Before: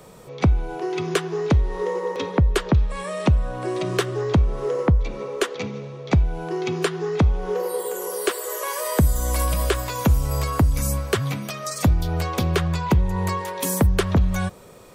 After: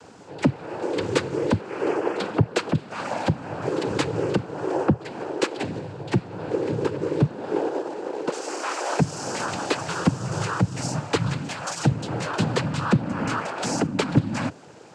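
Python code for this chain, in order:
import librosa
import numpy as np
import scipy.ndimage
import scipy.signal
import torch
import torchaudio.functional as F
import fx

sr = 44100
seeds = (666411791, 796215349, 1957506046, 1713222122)

y = fx.median_filter(x, sr, points=25, at=(6.27, 8.32))
y = fx.noise_vocoder(y, sr, seeds[0], bands=8)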